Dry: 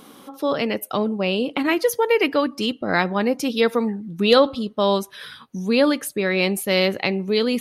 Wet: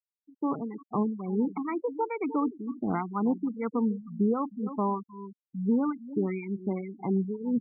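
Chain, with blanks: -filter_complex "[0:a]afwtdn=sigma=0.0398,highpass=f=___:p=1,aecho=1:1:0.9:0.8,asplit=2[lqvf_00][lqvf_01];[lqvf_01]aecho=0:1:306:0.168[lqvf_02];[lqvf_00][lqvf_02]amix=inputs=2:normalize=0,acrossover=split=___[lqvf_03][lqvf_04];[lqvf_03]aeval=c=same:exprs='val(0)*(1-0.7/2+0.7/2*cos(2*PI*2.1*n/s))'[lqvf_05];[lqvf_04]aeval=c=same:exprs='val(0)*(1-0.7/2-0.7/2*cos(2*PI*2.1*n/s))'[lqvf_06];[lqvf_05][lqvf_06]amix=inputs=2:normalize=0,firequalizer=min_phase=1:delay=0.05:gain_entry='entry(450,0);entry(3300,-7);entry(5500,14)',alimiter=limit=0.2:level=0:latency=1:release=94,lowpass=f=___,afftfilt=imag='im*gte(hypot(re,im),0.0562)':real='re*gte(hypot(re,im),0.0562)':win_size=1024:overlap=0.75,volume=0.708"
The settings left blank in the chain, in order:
130, 1100, 1.3k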